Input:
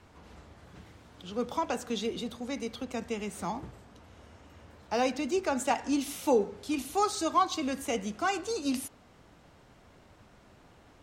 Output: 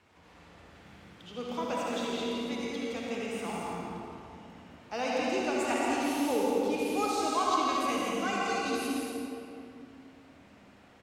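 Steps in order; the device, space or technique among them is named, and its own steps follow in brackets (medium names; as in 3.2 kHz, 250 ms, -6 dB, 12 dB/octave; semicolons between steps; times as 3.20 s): stadium PA (high-pass 130 Hz 6 dB/octave; peaking EQ 2.4 kHz +5 dB 1.1 oct; loudspeakers at several distances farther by 57 m -5 dB, 77 m -6 dB; reverberation RT60 2.7 s, pre-delay 53 ms, DRR -3.5 dB); trim -7 dB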